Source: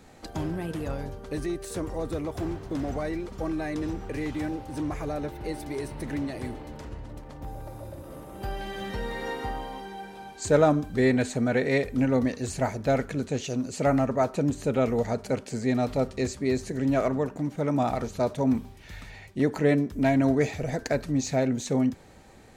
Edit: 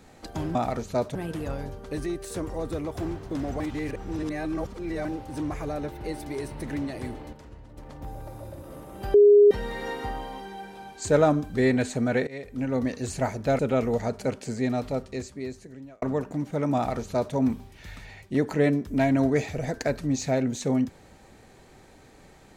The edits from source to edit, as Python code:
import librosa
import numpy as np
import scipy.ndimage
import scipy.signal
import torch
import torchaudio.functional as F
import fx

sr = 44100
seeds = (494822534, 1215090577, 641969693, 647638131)

y = fx.edit(x, sr, fx.reverse_span(start_s=3.0, length_s=1.45),
    fx.clip_gain(start_s=6.73, length_s=0.45, db=-7.0),
    fx.bleep(start_s=8.54, length_s=0.37, hz=411.0, db=-11.0),
    fx.fade_in_from(start_s=11.67, length_s=0.71, floor_db=-21.0),
    fx.cut(start_s=12.99, length_s=1.65),
    fx.fade_out_span(start_s=15.51, length_s=1.56),
    fx.duplicate(start_s=17.8, length_s=0.6, to_s=0.55), tone=tone)